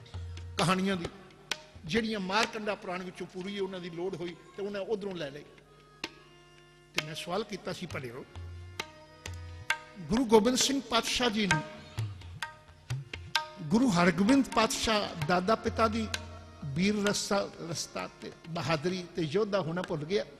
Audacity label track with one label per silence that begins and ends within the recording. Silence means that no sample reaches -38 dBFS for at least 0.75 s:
6.070000	6.960000	silence